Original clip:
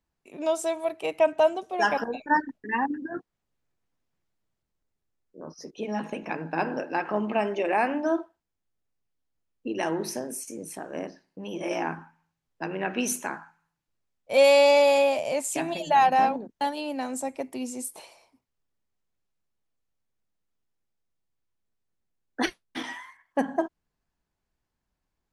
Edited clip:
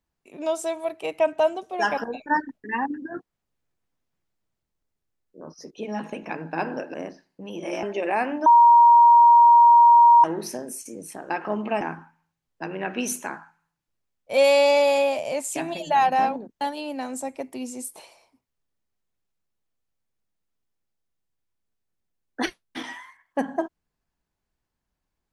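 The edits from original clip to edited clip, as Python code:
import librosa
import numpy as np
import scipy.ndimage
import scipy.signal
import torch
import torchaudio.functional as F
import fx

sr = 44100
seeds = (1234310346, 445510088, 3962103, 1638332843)

y = fx.edit(x, sr, fx.swap(start_s=6.94, length_s=0.51, other_s=10.92, other_length_s=0.89),
    fx.bleep(start_s=8.08, length_s=1.78, hz=944.0, db=-9.5), tone=tone)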